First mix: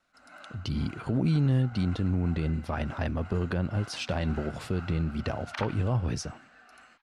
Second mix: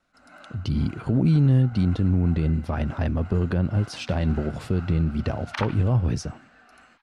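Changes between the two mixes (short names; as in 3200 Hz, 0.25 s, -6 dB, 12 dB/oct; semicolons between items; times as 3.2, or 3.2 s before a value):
second sound +5.0 dB; master: add low shelf 490 Hz +7 dB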